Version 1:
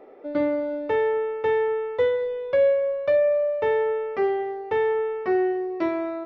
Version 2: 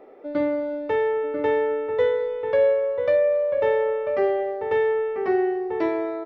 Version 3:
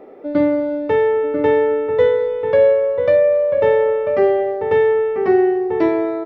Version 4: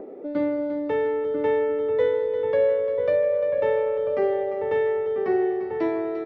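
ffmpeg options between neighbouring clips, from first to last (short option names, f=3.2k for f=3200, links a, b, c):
-filter_complex "[0:a]asplit=2[a][b];[b]adelay=991.3,volume=-6dB,highshelf=f=4k:g=-22.3[c];[a][c]amix=inputs=2:normalize=0"
-af "equalizer=f=140:w=0.55:g=8.5,volume=4.5dB"
-filter_complex "[0:a]acrossover=split=160|560|840[a][b][c][d];[a]alimiter=level_in=10.5dB:limit=-24dB:level=0:latency=1,volume=-10.5dB[e];[b]acompressor=mode=upward:threshold=-20dB:ratio=2.5[f];[e][f][c][d]amix=inputs=4:normalize=0,aecho=1:1:348|696|1044|1392|1740|2088:0.299|0.158|0.0839|0.0444|0.0236|0.0125,volume=-8.5dB"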